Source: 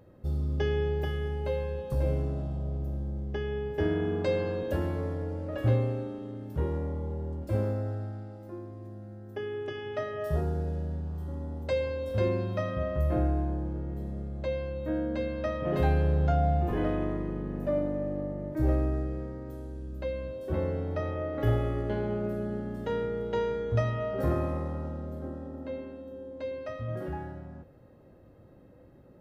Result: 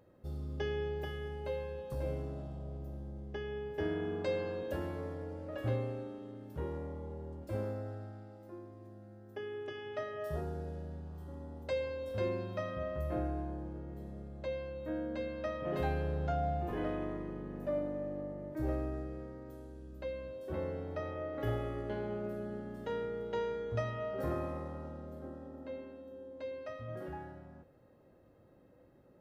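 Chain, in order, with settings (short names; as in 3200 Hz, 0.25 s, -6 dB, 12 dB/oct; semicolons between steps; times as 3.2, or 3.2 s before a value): low shelf 220 Hz -7 dB; gain -5 dB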